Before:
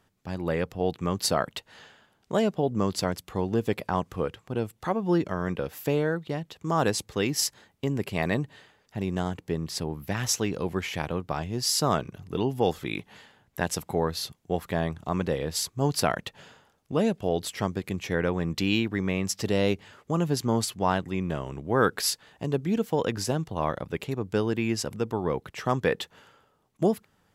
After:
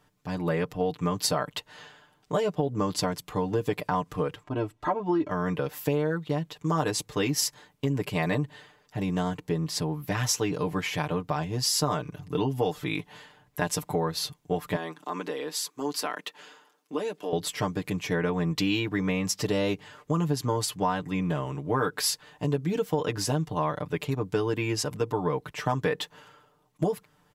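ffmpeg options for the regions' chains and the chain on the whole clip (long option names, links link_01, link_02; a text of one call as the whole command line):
ffmpeg -i in.wav -filter_complex "[0:a]asettb=1/sr,asplit=3[link_01][link_02][link_03];[link_01]atrim=end=4.434[link_04];[link_02]atrim=start=4.43:end=5.31,asetpts=PTS-STARTPTS,afade=type=in:duration=0.004:curve=qsin,afade=type=out:start_time=0.876:duration=0.004:curve=qsin,aemphasis=mode=reproduction:type=75kf,aecho=1:1:3.1:0.69,atrim=end_sample=38808[link_05];[link_03]atrim=start=5.306[link_06];[link_04][link_05]acrossfade=duration=0.004:curve1=hsin:curve2=qsin[link_07];[link_07][link_06]acrossfade=duration=0.004:curve1=qsin:curve2=hsin,asettb=1/sr,asplit=3[link_08][link_09][link_10];[link_08]atrim=end=14.764[link_11];[link_09]atrim=start=14.76:end=17.33,asetpts=PTS-STARTPTS,afade=type=in:duration=0.004:curve=qsin,afade=type=out:start_time=2.566:duration=0.004:curve=qsin,highpass=frequency=260:width=0.5412,highpass=frequency=260:width=1.3066,equalizer=frequency=620:width=2:gain=-5.5,acompressor=threshold=-32dB:ratio=2:attack=3.2:release=140:knee=1:detection=peak[link_12];[link_10]atrim=start=17.326[link_13];[link_11][link_12]acrossfade=duration=0.004:curve1=hsin:curve2=qsin[link_14];[link_14][link_13]acrossfade=duration=0.004:curve1=qsin:curve2=hsin,equalizer=frequency=1000:width=6.3:gain=5,aecho=1:1:6.7:0.79,acompressor=threshold=-22dB:ratio=6" out.wav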